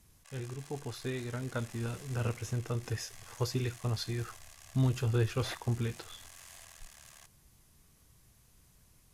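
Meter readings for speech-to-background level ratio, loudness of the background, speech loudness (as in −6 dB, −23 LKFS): 16.5 dB, −52.0 LKFS, −35.5 LKFS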